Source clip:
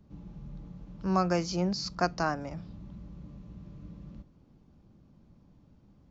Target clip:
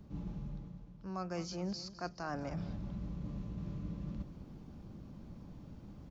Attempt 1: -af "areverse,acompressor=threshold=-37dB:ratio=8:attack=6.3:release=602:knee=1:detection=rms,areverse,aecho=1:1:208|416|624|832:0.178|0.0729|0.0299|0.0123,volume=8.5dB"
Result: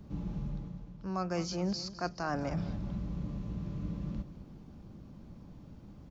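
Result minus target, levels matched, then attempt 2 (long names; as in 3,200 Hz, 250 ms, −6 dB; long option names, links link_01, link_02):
downward compressor: peak gain reduction −5.5 dB
-af "areverse,acompressor=threshold=-43.5dB:ratio=8:attack=6.3:release=602:knee=1:detection=rms,areverse,aecho=1:1:208|416|624|832:0.178|0.0729|0.0299|0.0123,volume=8.5dB"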